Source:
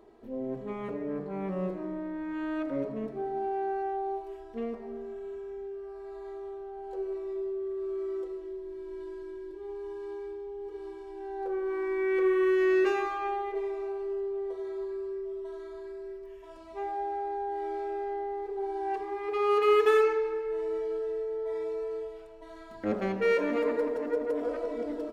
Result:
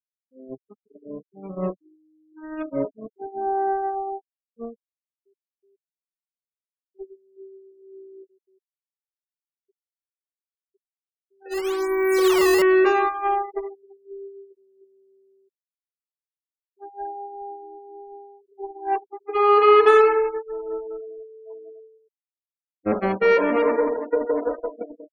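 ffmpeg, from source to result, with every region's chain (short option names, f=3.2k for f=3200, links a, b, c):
-filter_complex "[0:a]asettb=1/sr,asplit=3[a][b][c];[a]atrim=end=9.254[d];[b]atrim=start=9.25:end=12.62,asetpts=PTS-STARTPTS,afade=t=in:d=0.004:c=qsin,afade=t=out:st=3.366:d=0.004:c=qsin,acrusher=samples=11:mix=1:aa=0.000001:lfo=1:lforange=17.6:lforate=1,aecho=1:1:68|136|204|272:0.0794|0.0429|0.0232|0.0125,atrim=end_sample=148617[e];[c]atrim=start=12.616[f];[d][e]acrossfade=d=0.004:c1=hsin:c2=qsin[g];[g][f]acrossfade=d=0.004:c1=qsin:c2=hsin,agate=range=-28dB:threshold=-31dB:ratio=16:detection=peak,afftfilt=real='re*gte(hypot(re,im),0.00631)':imag='im*gte(hypot(re,im),0.00631)':win_size=1024:overlap=0.75,adynamicequalizer=threshold=0.00562:dfrequency=1000:dqfactor=1.2:tfrequency=1000:tqfactor=1.2:attack=5:release=100:ratio=0.375:range=3.5:mode=boostabove:tftype=bell,volume=6.5dB"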